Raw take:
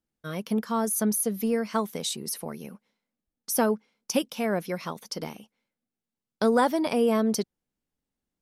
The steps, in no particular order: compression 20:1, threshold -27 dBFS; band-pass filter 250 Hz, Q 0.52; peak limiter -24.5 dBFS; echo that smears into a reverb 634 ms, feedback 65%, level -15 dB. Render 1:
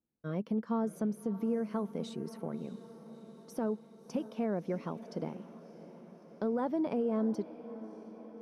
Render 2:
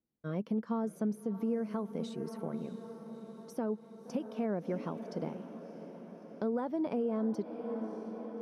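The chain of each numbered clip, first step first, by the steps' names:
band-pass filter > compression > peak limiter > echo that smears into a reverb; echo that smears into a reverb > compression > band-pass filter > peak limiter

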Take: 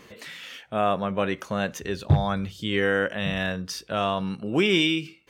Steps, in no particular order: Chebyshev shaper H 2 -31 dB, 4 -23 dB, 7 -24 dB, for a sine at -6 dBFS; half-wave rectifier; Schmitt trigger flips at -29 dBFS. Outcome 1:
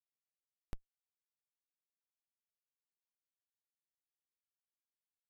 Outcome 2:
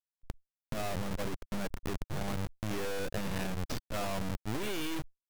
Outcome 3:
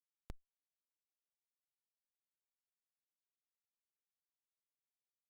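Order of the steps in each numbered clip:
Chebyshev shaper > half-wave rectifier > Schmitt trigger; Schmitt trigger > Chebyshev shaper > half-wave rectifier; half-wave rectifier > Schmitt trigger > Chebyshev shaper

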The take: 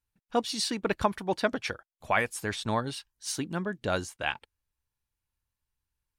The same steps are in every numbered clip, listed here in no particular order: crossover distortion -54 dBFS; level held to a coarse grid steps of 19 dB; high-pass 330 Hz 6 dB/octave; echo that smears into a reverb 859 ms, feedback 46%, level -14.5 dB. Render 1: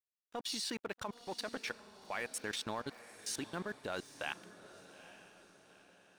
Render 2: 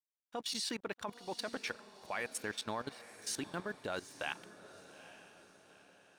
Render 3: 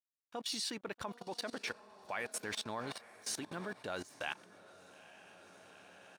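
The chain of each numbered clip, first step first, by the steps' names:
high-pass > level held to a coarse grid > crossover distortion > echo that smears into a reverb; high-pass > crossover distortion > level held to a coarse grid > echo that smears into a reverb; crossover distortion > echo that smears into a reverb > level held to a coarse grid > high-pass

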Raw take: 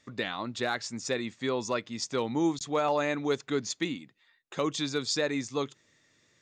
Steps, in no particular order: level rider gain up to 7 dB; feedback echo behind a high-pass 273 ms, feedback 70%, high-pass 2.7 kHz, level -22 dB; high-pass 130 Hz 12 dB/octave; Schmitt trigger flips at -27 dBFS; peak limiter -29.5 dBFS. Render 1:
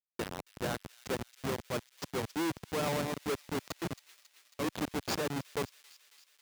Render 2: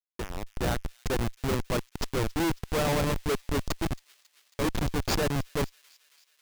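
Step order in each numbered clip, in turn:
Schmitt trigger > feedback echo behind a high-pass > level rider > peak limiter > high-pass; high-pass > Schmitt trigger > feedback echo behind a high-pass > peak limiter > level rider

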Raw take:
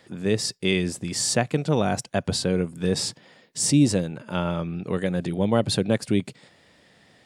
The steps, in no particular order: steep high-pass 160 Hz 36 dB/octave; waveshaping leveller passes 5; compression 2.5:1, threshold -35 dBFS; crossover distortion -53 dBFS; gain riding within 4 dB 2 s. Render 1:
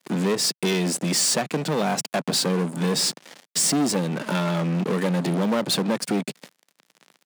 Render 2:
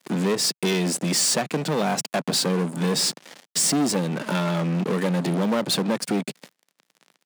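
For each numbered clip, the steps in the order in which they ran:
crossover distortion > compression > gain riding > waveshaping leveller > steep high-pass; crossover distortion > gain riding > compression > waveshaping leveller > steep high-pass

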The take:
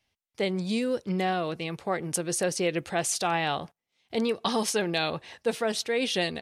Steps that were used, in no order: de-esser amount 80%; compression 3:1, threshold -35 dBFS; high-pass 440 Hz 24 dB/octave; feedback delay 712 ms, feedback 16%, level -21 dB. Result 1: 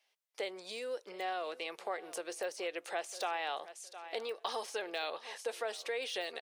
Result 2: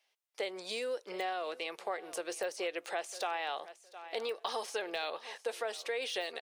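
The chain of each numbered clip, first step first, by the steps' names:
feedback delay > de-esser > compression > high-pass; high-pass > de-esser > feedback delay > compression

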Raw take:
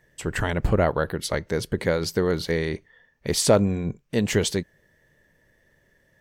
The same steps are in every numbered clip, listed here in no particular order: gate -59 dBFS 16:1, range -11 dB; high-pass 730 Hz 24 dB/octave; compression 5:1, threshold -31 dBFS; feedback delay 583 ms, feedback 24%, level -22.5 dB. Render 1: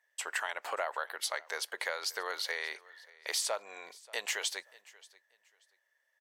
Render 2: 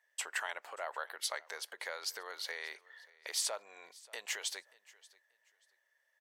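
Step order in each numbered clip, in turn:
high-pass > gate > compression > feedback delay; compression > high-pass > gate > feedback delay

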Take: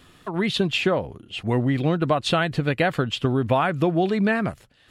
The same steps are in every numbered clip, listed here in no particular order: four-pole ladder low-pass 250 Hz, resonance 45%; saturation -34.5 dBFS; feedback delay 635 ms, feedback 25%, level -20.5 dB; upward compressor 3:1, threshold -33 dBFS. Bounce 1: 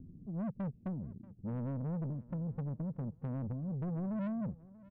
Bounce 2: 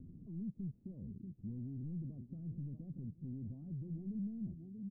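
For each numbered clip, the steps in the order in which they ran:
upward compressor > four-pole ladder low-pass > saturation > feedback delay; feedback delay > upward compressor > saturation > four-pole ladder low-pass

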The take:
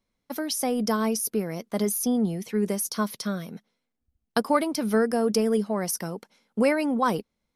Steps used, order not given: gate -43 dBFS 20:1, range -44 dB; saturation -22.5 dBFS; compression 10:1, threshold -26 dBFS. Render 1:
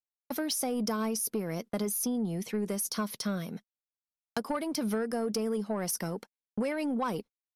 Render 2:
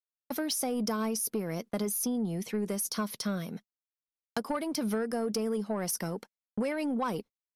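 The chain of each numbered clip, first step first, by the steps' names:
compression > saturation > gate; compression > gate > saturation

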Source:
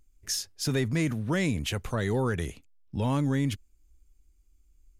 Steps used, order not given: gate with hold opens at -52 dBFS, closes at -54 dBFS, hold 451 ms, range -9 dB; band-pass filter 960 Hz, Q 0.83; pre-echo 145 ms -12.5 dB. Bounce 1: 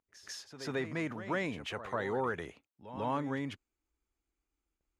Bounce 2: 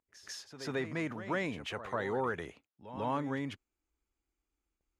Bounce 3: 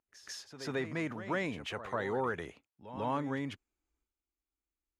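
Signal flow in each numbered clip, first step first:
gate with hold > pre-echo > band-pass filter; gate with hold > band-pass filter > pre-echo; band-pass filter > gate with hold > pre-echo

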